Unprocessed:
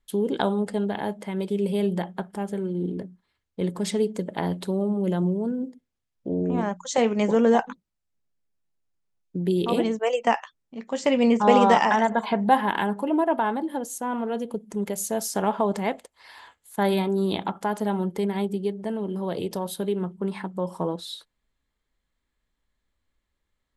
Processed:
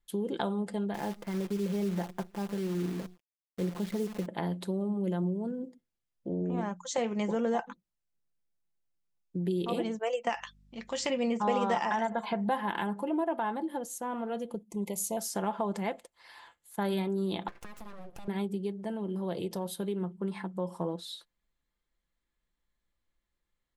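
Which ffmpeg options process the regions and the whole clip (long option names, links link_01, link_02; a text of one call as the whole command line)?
ffmpeg -i in.wav -filter_complex "[0:a]asettb=1/sr,asplit=3[link_01][link_02][link_03];[link_01]atrim=end=0.944[link_04];[link_02]atrim=start=0.94:end=4.26,asetpts=PTS-STARTPTS,afade=type=in:duration=0.004:curve=qsin,afade=type=out:start_time=3.316:duration=0.004:curve=qsin,lowpass=2000,lowshelf=frequency=72:gain=7.5,acrusher=bits=7:dc=4:mix=0:aa=0.000001[link_05];[link_03]atrim=start=4.256[link_06];[link_04][link_05]acrossfade=duration=0.004:curve1=hsin:curve2=qsin[link_07];[link_07][link_06]acrossfade=duration=0.004:curve1=qsin:curve2=hsin,asettb=1/sr,asplit=3[link_08][link_09][link_10];[link_08]atrim=end=10.294[link_11];[link_09]atrim=start=10.29:end=11.1,asetpts=PTS-STARTPTS,afade=type=in:duration=0.004:curve=qsin,afade=type=out:start_time=0.806:duration=0.004:curve=qsin,equalizer=frequency=4200:width_type=o:width=2.9:gain=10.5,aeval=exprs='val(0)+0.002*(sin(2*PI*50*n/s)+sin(2*PI*2*50*n/s)/2+sin(2*PI*3*50*n/s)/3+sin(2*PI*4*50*n/s)/4+sin(2*PI*5*50*n/s)/5)':channel_layout=same,acompressor=threshold=-26dB:ratio=1.5:attack=3.2:release=140:knee=1:detection=peak[link_12];[link_10]atrim=start=11.096[link_13];[link_11][link_12]acrossfade=duration=0.004:curve1=hsin:curve2=qsin[link_14];[link_14][link_13]acrossfade=duration=0.004:curve1=qsin:curve2=hsin,asettb=1/sr,asplit=3[link_15][link_16][link_17];[link_15]atrim=end=14.634[link_18];[link_16]atrim=start=14.63:end=15.17,asetpts=PTS-STARTPTS,afade=type=in:duration=0.004:curve=qsin,afade=type=out:start_time=0.536:duration=0.004:curve=qsin,highshelf=frequency=7700:gain=5,agate=range=-9dB:threshold=-44dB:ratio=16:release=100:detection=peak,asuperstop=centerf=1500:order=20:qfactor=1.9[link_19];[link_17]atrim=start=15.166[link_20];[link_18][link_19]acrossfade=duration=0.004:curve1=hsin:curve2=qsin[link_21];[link_21][link_20]acrossfade=duration=0.004:curve1=qsin:curve2=hsin,asettb=1/sr,asplit=3[link_22][link_23][link_24];[link_22]atrim=end=17.484[link_25];[link_23]atrim=start=17.48:end=18.28,asetpts=PTS-STARTPTS,afade=type=in:duration=0.004:curve=qsin,afade=type=out:start_time=0.796:duration=0.004:curve=qsin,highpass=250,aeval=exprs='abs(val(0))':channel_layout=same,acompressor=threshold=-34dB:ratio=12:attack=3.2:release=140:knee=1:detection=peak[link_26];[link_24]atrim=start=18.276[link_27];[link_25][link_26]acrossfade=duration=0.004:curve1=hsin:curve2=qsin[link_28];[link_28][link_27]acrossfade=duration=0.004:curve1=qsin:curve2=hsin,aecho=1:1:5.8:0.33,acompressor=threshold=-23dB:ratio=2,volume=-6dB" out.wav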